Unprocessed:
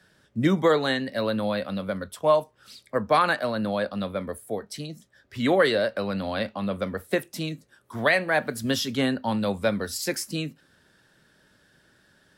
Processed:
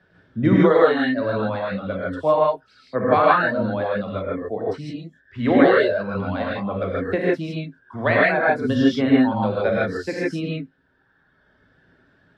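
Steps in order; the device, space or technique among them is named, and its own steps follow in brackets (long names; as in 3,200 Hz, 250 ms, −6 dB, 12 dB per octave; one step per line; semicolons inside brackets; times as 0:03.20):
phone in a pocket (low-pass filter 3,200 Hz 12 dB per octave; high-shelf EQ 2,100 Hz −8.5 dB)
reverb reduction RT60 1.7 s
0:04.14–0:04.64: high-frequency loss of the air 94 metres
reverb whose tail is shaped and stops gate 180 ms rising, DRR −5.5 dB
level +2 dB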